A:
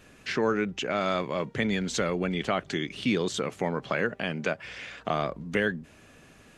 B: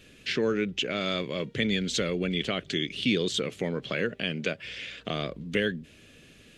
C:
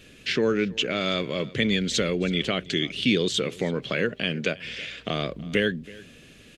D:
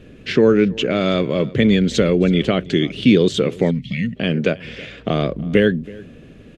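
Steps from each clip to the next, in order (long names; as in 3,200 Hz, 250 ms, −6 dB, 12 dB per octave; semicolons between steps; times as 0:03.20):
drawn EQ curve 500 Hz 0 dB, 860 Hz −13 dB, 3,300 Hz +7 dB, 5,900 Hz 0 dB
single-tap delay 324 ms −21 dB; level +3.5 dB
gain on a spectral selection 0:03.71–0:04.16, 260–1,800 Hz −28 dB; tilt shelving filter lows +6 dB, about 1,400 Hz; one half of a high-frequency compander decoder only; level +5 dB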